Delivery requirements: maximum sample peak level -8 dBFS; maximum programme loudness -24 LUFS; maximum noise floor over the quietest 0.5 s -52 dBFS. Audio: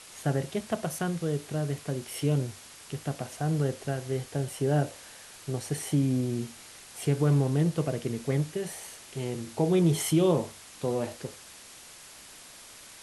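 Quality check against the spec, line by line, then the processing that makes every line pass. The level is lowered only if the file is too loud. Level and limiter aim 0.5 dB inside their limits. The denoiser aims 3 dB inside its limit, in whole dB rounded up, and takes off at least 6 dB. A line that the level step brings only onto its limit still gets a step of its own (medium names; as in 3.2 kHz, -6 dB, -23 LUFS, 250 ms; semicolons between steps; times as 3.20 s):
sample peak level -13.0 dBFS: pass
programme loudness -29.5 LUFS: pass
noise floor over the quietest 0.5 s -49 dBFS: fail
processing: noise reduction 6 dB, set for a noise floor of -49 dBFS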